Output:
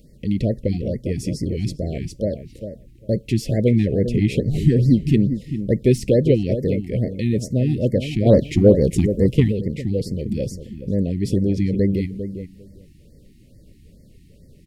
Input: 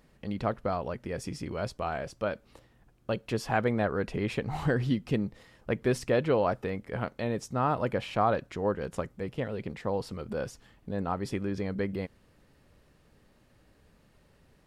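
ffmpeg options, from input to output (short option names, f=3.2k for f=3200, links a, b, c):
-filter_complex "[0:a]asuperstop=centerf=1100:order=12:qfactor=0.82,highshelf=f=4.4k:g=6.5,deesser=0.7,lowshelf=f=440:g=10.5,asplit=2[a][b];[b]adelay=400,lowpass=f=1.3k:p=1,volume=-9dB,asplit=2[c][d];[d]adelay=400,lowpass=f=1.3k:p=1,volume=0.15[e];[a][c][e]amix=inputs=3:normalize=0,asplit=3[f][g][h];[f]afade=t=out:st=8.25:d=0.02[i];[g]acontrast=87,afade=t=in:st=8.25:d=0.02,afade=t=out:st=9.51:d=0.02[j];[h]afade=t=in:st=9.51:d=0.02[k];[i][j][k]amix=inputs=3:normalize=0,afftfilt=real='re*(1-between(b*sr/1024,500*pow(3100/500,0.5+0.5*sin(2*PI*2.3*pts/sr))/1.41,500*pow(3100/500,0.5+0.5*sin(2*PI*2.3*pts/sr))*1.41))':imag='im*(1-between(b*sr/1024,500*pow(3100/500,0.5+0.5*sin(2*PI*2.3*pts/sr))/1.41,500*pow(3100/500,0.5+0.5*sin(2*PI*2.3*pts/sr))*1.41))':win_size=1024:overlap=0.75,volume=4.5dB"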